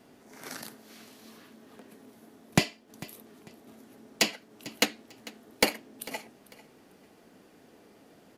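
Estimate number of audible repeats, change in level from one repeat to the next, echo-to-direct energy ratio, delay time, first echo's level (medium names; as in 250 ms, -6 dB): 2, -11.0 dB, -19.0 dB, 447 ms, -19.5 dB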